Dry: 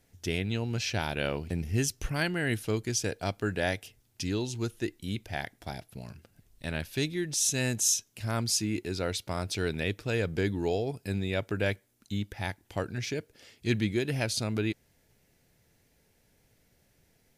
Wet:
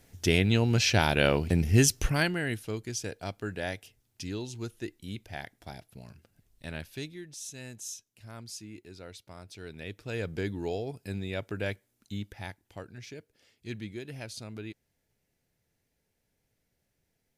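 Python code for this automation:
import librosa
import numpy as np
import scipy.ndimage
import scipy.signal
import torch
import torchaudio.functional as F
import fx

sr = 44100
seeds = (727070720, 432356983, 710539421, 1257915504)

y = fx.gain(x, sr, db=fx.line((2.0, 7.0), (2.61, -5.0), (6.79, -5.0), (7.39, -14.5), (9.57, -14.5), (10.23, -4.0), (12.26, -4.0), (12.84, -11.0)))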